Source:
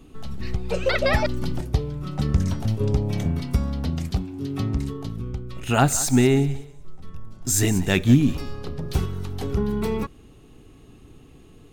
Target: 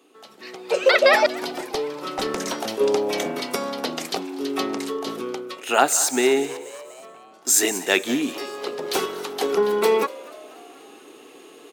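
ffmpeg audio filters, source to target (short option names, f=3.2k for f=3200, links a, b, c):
-filter_complex "[0:a]highpass=f=360:w=0.5412,highpass=f=360:w=1.3066,asplit=3[a][b][c];[a]afade=t=out:st=5.06:d=0.02[d];[b]acontrast=88,afade=t=in:st=5.06:d=0.02,afade=t=out:st=5.54:d=0.02[e];[c]afade=t=in:st=5.54:d=0.02[f];[d][e][f]amix=inputs=3:normalize=0,asettb=1/sr,asplit=3[g][h][i];[g]atrim=end=6.574[j];[h]atrim=start=6.57:end=7.34,asetpts=PTS-STARTPTS,afade=t=in:d=0.004:c=qsin,afade=t=out:st=0.766:d=0.004:c=qsin,lowpass=2.2k[k];[i]atrim=start=7.336[l];[j][k]acrossfade=d=0.004:c1=hsin:c2=qsin[m];[m][l]acrossfade=d=0.004:c1=qsin:c2=hsin,asplit=5[n][o][p][q][r];[o]adelay=242,afreqshift=90,volume=-21dB[s];[p]adelay=484,afreqshift=180,volume=-26dB[t];[q]adelay=726,afreqshift=270,volume=-31.1dB[u];[r]adelay=968,afreqshift=360,volume=-36.1dB[v];[n][s][t][u][v]amix=inputs=5:normalize=0,dynaudnorm=f=170:g=7:m=12dB,asettb=1/sr,asplit=3[w][x][y];[w]atrim=end=1.524[z];[x]atrim=start=1.52:end=2.54,asetpts=PTS-STARTPTS,afade=t=in:d=0.004:c=qsin,afade=t=out:st=1.016:d=0.004:c=qsin,aeval=exprs='clip(val(0),-1,0.112)':c=same[aa];[y]atrim=start=2.536[ab];[z][aa]acrossfade=d=0.004:c1=hsin:c2=qsin[ac];[ac][ab]acrossfade=d=0.004:c1=qsin:c2=hsin,volume=-1dB"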